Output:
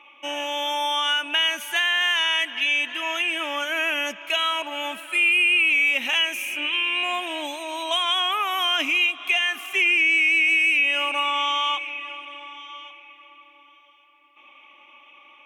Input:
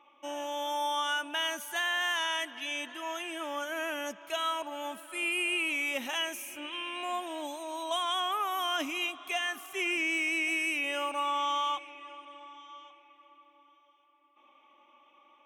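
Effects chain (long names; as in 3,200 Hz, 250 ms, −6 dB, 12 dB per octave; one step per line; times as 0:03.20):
parametric band 2,500 Hz +14.5 dB 0.96 octaves
downward compressor 2 to 1, threshold −26 dBFS, peak gain reduction 6.5 dB
level +5 dB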